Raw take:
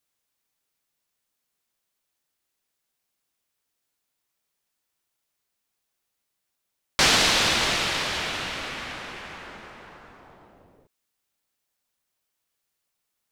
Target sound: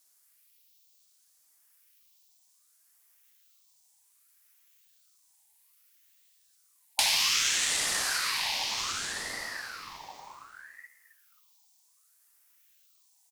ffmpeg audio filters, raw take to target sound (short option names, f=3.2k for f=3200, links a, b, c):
-filter_complex "[0:a]afftfilt=real='re*pow(10,9/40*sin(2*PI*(0.51*log(max(b,1)*sr/1024/100)/log(2)-(0.75)*(pts-256)/sr)))':imag='im*pow(10,9/40*sin(2*PI*(0.51*log(max(b,1)*sr/1024/100)/log(2)-(0.75)*(pts-256)/sr)))':win_size=1024:overlap=0.75,asubboost=boost=11:cutoff=150,aexciter=amount=9.7:drive=2.8:freq=2.8k,acompressor=threshold=-22dB:ratio=3,asplit=2[a][b];[b]adelay=267,lowpass=f=1.7k:p=1,volume=-13dB,asplit=2[c][d];[d]adelay=267,lowpass=f=1.7k:p=1,volume=0.27,asplit=2[e][f];[f]adelay=267,lowpass=f=1.7k:p=1,volume=0.27[g];[c][e][g]amix=inputs=3:normalize=0[h];[a][h]amix=inputs=2:normalize=0,aeval=exprs='val(0)*sin(2*PI*1400*n/s+1400*0.4/0.64*sin(2*PI*0.64*n/s))':c=same,volume=-4.5dB"